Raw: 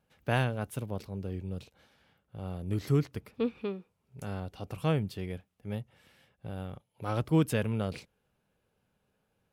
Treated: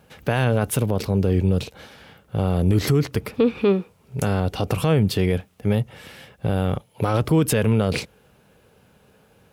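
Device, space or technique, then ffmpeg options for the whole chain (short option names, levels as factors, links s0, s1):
mastering chain: -af "highpass=43,equalizer=f=450:t=o:w=0.33:g=3,acompressor=threshold=0.0224:ratio=1.5,alimiter=level_in=26.6:limit=0.891:release=50:level=0:latency=1,volume=0.376"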